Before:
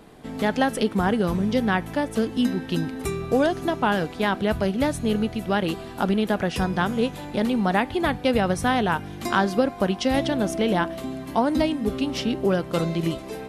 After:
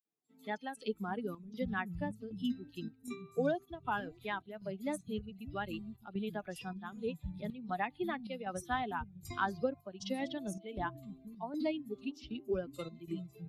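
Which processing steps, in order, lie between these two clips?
expander on every frequency bin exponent 2; three bands offset in time highs, mids, lows 50/660 ms, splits 190/4800 Hz; square tremolo 1.3 Hz, depth 60%, duty 75%; trim -8.5 dB

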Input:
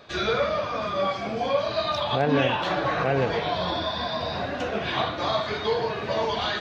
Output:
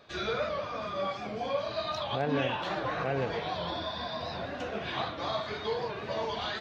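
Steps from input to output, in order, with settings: warped record 78 rpm, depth 100 cents; trim -7.5 dB

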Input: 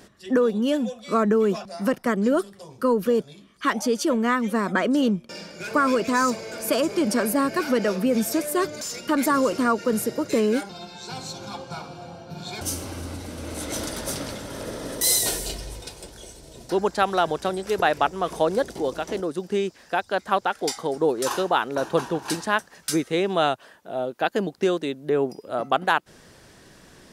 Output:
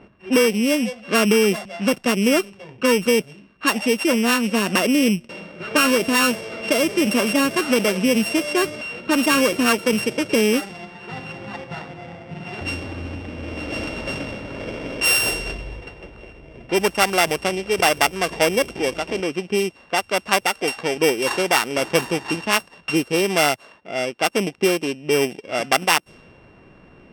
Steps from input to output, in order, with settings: sorted samples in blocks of 16 samples; level-controlled noise filter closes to 2 kHz, open at -18.5 dBFS; trim +3.5 dB

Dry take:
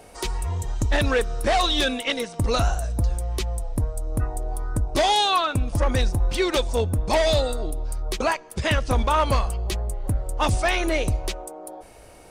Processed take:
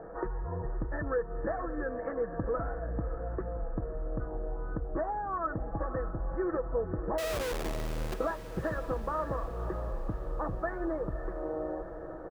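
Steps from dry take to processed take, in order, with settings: comb 6.1 ms, depth 52%; compression 12:1, threshold -31 dBFS, peak gain reduction 17 dB; rippled Chebyshev low-pass 1.8 kHz, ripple 6 dB; 7.18–8.14 s: Schmitt trigger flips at -48.5 dBFS; on a send: echo that smears into a reverb 559 ms, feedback 58%, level -11 dB; on the sum: trim +5 dB

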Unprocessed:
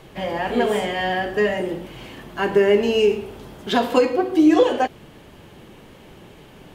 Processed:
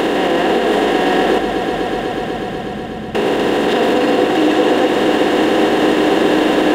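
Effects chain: spectral levelling over time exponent 0.2; 1.38–3.15 s: inverse Chebyshev low-pass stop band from 940 Hz, stop band 80 dB; peak limiter -7 dBFS, peak gain reduction 8.5 dB; on a send: echo with a slow build-up 123 ms, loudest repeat 5, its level -12 dB

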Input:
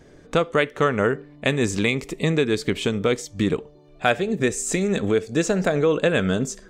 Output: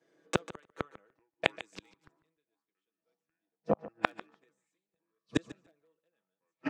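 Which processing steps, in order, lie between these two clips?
ever faster or slower copies 685 ms, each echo -6 st, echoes 3; comb 6.1 ms, depth 62%; in parallel at -10 dB: integer overflow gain 6 dB; on the sum: high-pass 330 Hz 12 dB/octave; inverted gate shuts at -14 dBFS, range -40 dB; treble shelf 6 kHz -6.5 dB; feedback delay 147 ms, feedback 17%, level -14 dB; three bands expanded up and down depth 100%; trim -4.5 dB

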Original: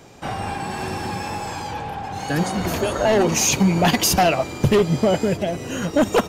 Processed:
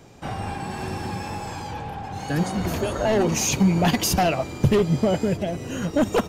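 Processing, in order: bass shelf 260 Hz +6 dB; trim -5 dB

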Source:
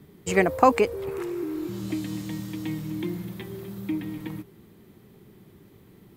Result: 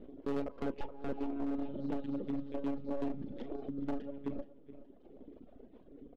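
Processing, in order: monotone LPC vocoder at 8 kHz 140 Hz; full-wave rectifier; doubling 35 ms -10 dB; reverb removal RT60 1.8 s; ten-band graphic EQ 125 Hz -11 dB, 250 Hz +11 dB, 500 Hz +7 dB, 1 kHz -5 dB, 2 kHz -9 dB; feedback delay 423 ms, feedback 31%, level -16.5 dB; compression 20:1, threshold -25 dBFS, peak gain reduction 18 dB; low-pass 2.8 kHz 12 dB/octave; overload inside the chain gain 27.5 dB; trim -2 dB

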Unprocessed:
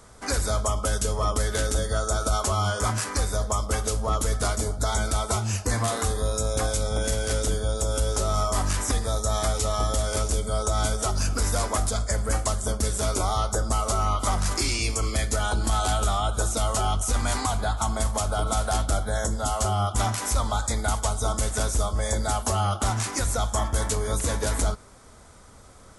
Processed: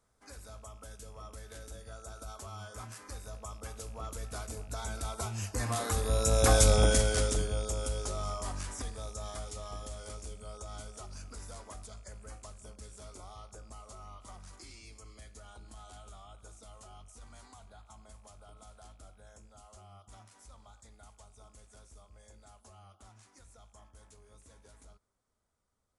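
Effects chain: rattle on loud lows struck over -30 dBFS, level -34 dBFS; Doppler pass-by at 6.66 s, 7 m/s, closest 1.8 m; trim +4 dB

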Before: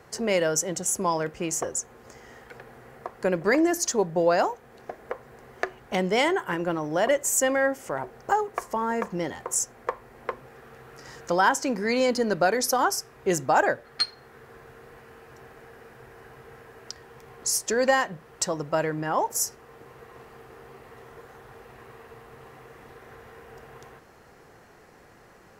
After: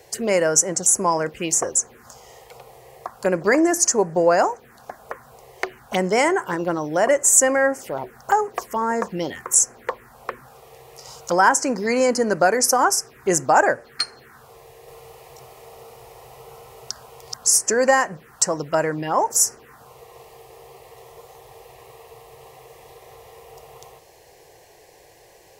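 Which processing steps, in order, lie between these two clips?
14.63–17.37 s: chunks repeated in reverse 249 ms, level -1 dB; tilt EQ +1.5 dB/octave; touch-sensitive phaser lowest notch 200 Hz, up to 3.6 kHz, full sweep at -23.5 dBFS; trim +6.5 dB

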